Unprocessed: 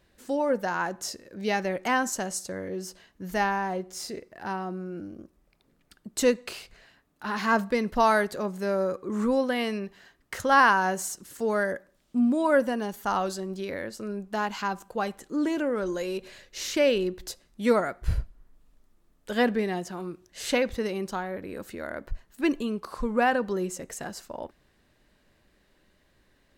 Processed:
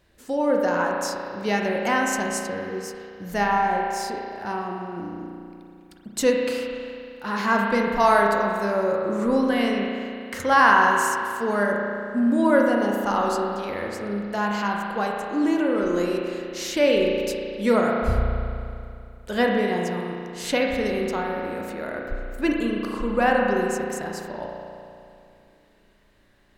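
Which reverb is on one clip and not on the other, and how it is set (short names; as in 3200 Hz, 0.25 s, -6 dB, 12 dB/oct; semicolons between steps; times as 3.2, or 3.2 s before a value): spring tank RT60 2.5 s, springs 34 ms, chirp 30 ms, DRR -0.5 dB; gain +1.5 dB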